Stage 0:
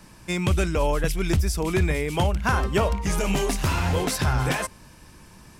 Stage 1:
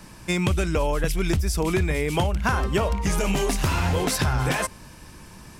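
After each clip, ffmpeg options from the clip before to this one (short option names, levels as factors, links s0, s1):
-af "acompressor=threshold=0.0708:ratio=6,volume=1.58"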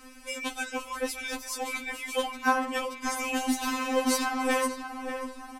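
-filter_complex "[0:a]asplit=2[s0][s1];[s1]adelay=586,lowpass=f=2200:p=1,volume=0.398,asplit=2[s2][s3];[s3]adelay=586,lowpass=f=2200:p=1,volume=0.53,asplit=2[s4][s5];[s5]adelay=586,lowpass=f=2200:p=1,volume=0.53,asplit=2[s6][s7];[s7]adelay=586,lowpass=f=2200:p=1,volume=0.53,asplit=2[s8][s9];[s9]adelay=586,lowpass=f=2200:p=1,volume=0.53,asplit=2[s10][s11];[s11]adelay=586,lowpass=f=2200:p=1,volume=0.53[s12];[s0][s2][s4][s6][s8][s10][s12]amix=inputs=7:normalize=0,afftfilt=real='re*3.46*eq(mod(b,12),0)':imag='im*3.46*eq(mod(b,12),0)':win_size=2048:overlap=0.75,volume=0.891"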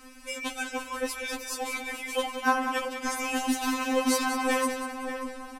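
-af "aecho=1:1:190|380|570|760:0.335|0.134|0.0536|0.0214"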